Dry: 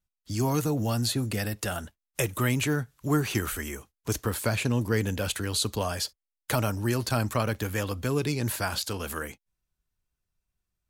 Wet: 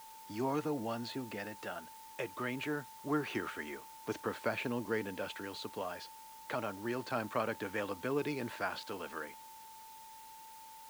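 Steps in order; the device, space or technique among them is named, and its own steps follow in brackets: shortwave radio (BPF 270–2700 Hz; tremolo 0.25 Hz, depth 41%; whine 890 Hz -47 dBFS; white noise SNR 18 dB); gain -4.5 dB

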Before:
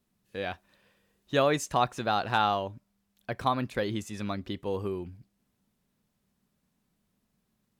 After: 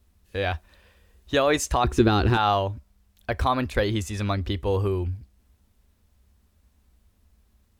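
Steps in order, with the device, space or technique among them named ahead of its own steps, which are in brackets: car stereo with a boomy subwoofer (resonant low shelf 100 Hz +12.5 dB, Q 3; limiter -18.5 dBFS, peak gain reduction 5.5 dB); 1.84–2.37 resonant low shelf 470 Hz +8.5 dB, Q 3; gain +7.5 dB

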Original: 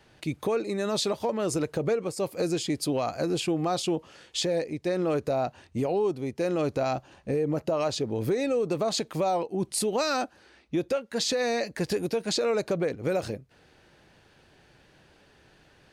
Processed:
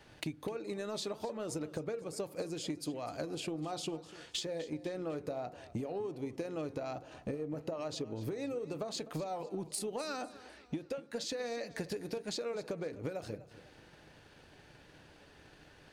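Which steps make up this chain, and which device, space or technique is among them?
FDN reverb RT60 0.34 s, low-frequency decay 1.05×, high-frequency decay 0.25×, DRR 13 dB; drum-bus smash (transient shaper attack +8 dB, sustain +1 dB; compressor 6:1, threshold -35 dBFS, peak gain reduction 18.5 dB; soft clip -25 dBFS, distortion -24 dB); warbling echo 0.251 s, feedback 42%, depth 68 cents, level -17 dB; gain -1 dB

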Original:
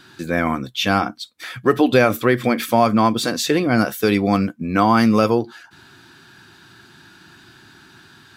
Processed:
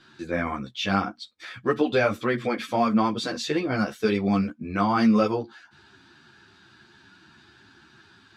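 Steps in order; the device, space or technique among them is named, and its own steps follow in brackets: string-machine ensemble chorus (ensemble effect; LPF 6100 Hz 12 dB/oct); gain -4 dB

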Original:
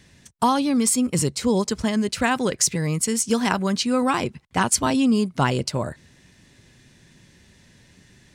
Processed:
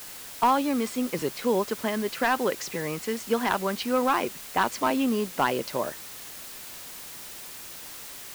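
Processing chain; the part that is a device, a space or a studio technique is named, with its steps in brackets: aircraft radio (BPF 350–2500 Hz; hard clip -14 dBFS, distortion -17 dB; white noise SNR 13 dB)

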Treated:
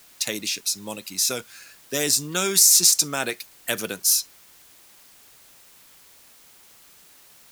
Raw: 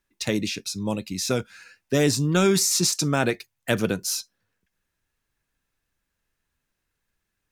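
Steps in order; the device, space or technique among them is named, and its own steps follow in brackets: turntable without a phono preamp (RIAA curve recording; white noise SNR 26 dB); gain -3 dB

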